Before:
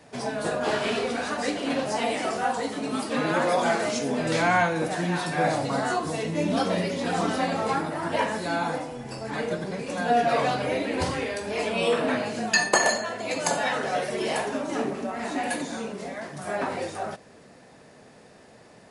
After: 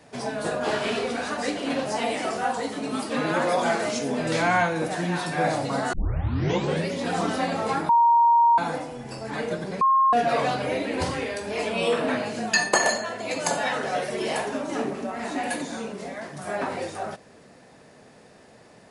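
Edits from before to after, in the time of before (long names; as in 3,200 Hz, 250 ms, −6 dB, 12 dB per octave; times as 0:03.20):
0:05.93: tape start 0.95 s
0:07.89–0:08.58: beep over 937 Hz −14 dBFS
0:09.81–0:10.13: beep over 1,070 Hz −15.5 dBFS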